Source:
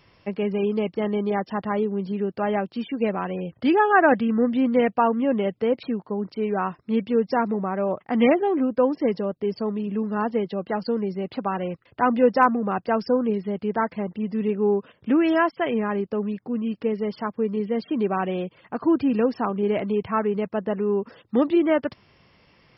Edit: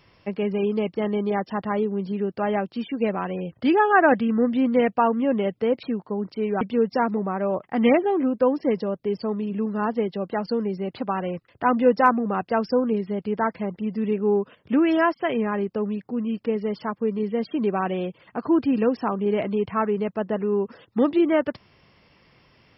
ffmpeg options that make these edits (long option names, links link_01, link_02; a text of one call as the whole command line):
ffmpeg -i in.wav -filter_complex "[0:a]asplit=2[link_01][link_02];[link_01]atrim=end=6.612[link_03];[link_02]atrim=start=6.978[link_04];[link_03][link_04]acrossfade=duration=0.004:curve1=hsin:curve2=hsin" out.wav